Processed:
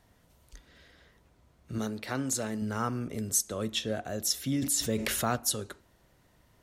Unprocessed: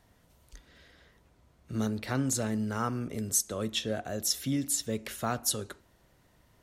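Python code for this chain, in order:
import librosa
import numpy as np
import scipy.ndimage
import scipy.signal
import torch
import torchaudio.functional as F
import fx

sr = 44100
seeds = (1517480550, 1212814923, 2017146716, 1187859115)

y = fx.low_shelf(x, sr, hz=150.0, db=-11.0, at=(1.78, 2.62))
y = fx.env_flatten(y, sr, amount_pct=70, at=(4.62, 5.36))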